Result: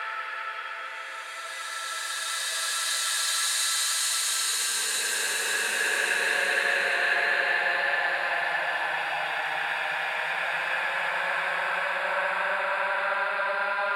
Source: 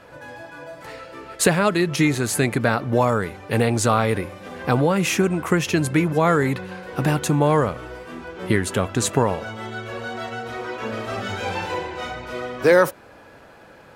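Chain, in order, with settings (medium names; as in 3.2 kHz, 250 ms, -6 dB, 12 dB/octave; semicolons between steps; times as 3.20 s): LFO high-pass saw down 1.1 Hz 620–1600 Hz; in parallel at +3 dB: peak limiter -12.5 dBFS, peak gain reduction 9 dB; on the sum: compression 4:1, threshold -22 dBFS, peak gain reduction 14 dB; Paulstretch 49×, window 0.10 s, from 1.34 s; high-order bell 2.4 kHz +8 dB; trim -7.5 dB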